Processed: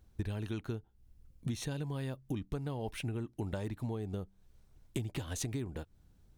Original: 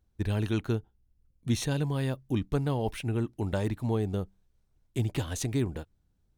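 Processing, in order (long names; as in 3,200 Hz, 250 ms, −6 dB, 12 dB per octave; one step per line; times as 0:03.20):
downward compressor 12 to 1, threshold −42 dBFS, peak gain reduction 20.5 dB
level +8 dB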